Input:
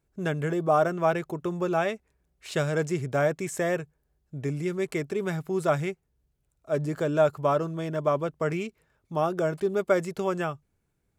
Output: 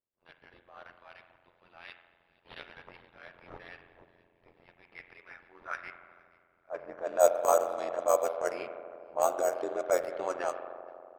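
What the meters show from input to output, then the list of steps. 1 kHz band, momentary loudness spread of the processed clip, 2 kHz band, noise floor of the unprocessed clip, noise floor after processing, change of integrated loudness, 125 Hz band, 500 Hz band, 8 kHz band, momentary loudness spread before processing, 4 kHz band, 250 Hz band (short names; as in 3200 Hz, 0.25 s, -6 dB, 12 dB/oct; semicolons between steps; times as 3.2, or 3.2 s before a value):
-4.0 dB, 24 LU, -9.0 dB, -75 dBFS, -70 dBFS, -3.0 dB, under -30 dB, -5.0 dB, +2.0 dB, 10 LU, n/a, -18.5 dB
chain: high shelf 4000 Hz +9 dB; high-pass sweep 3100 Hz -> 610 Hz, 4.7–7.26; transient shaper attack -9 dB, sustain -5 dB; air absorption 94 m; on a send: thin delay 0.474 s, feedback 51%, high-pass 2800 Hz, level -12.5 dB; on the sum: careless resampling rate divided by 6×, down none, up hold; spring tank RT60 2.5 s, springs 40 ms, chirp 75 ms, DRR 7 dB; AM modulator 87 Hz, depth 85%; low-pass opened by the level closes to 530 Hz, open at -24.5 dBFS; mismatched tape noise reduction encoder only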